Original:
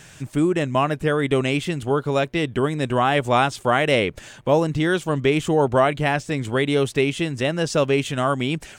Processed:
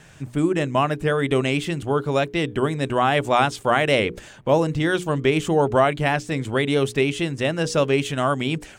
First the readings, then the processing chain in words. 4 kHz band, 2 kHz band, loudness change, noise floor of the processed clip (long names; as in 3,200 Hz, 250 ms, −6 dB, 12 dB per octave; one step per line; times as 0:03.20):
0.0 dB, 0.0 dB, −0.5 dB, −45 dBFS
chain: pitch vibrato 6.4 Hz 30 cents
mains-hum notches 60/120/180/240/300/360/420/480 Hz
one half of a high-frequency compander decoder only